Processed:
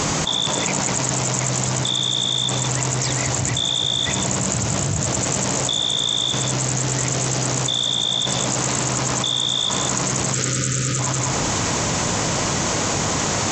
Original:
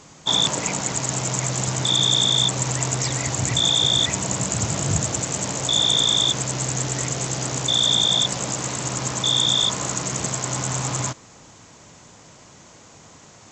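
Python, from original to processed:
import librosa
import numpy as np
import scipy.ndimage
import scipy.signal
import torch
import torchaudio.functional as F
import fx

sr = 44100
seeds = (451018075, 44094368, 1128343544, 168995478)

p1 = fx.spec_box(x, sr, start_s=10.34, length_s=0.65, low_hz=580.0, high_hz=1200.0, gain_db=-26)
p2 = p1 + fx.echo_single(p1, sr, ms=192, db=-14.5, dry=0)
p3 = fx.env_flatten(p2, sr, amount_pct=100)
y = p3 * librosa.db_to_amplitude(-5.0)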